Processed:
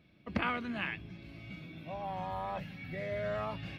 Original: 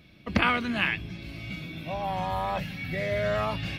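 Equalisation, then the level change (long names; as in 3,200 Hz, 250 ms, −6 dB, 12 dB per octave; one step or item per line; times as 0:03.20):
low-shelf EQ 60 Hz −9 dB
high-shelf EQ 3,100 Hz −10 dB
−7.5 dB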